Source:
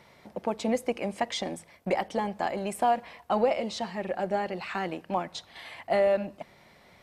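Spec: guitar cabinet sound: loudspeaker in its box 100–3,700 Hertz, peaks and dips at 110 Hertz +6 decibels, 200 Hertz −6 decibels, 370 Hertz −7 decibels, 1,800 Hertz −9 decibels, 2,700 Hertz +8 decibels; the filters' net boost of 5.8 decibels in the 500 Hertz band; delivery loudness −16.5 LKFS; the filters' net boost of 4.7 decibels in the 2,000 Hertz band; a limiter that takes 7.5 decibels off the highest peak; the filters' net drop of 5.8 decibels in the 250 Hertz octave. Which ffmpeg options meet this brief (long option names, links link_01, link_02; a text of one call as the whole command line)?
ffmpeg -i in.wav -af "equalizer=frequency=250:width_type=o:gain=-4,equalizer=frequency=500:width_type=o:gain=8.5,equalizer=frequency=2000:width_type=o:gain=7.5,alimiter=limit=-14.5dB:level=0:latency=1,highpass=100,equalizer=frequency=110:width_type=q:width=4:gain=6,equalizer=frequency=200:width_type=q:width=4:gain=-6,equalizer=frequency=370:width_type=q:width=4:gain=-7,equalizer=frequency=1800:width_type=q:width=4:gain=-9,equalizer=frequency=2700:width_type=q:width=4:gain=8,lowpass=frequency=3700:width=0.5412,lowpass=frequency=3700:width=1.3066,volume=12dB" out.wav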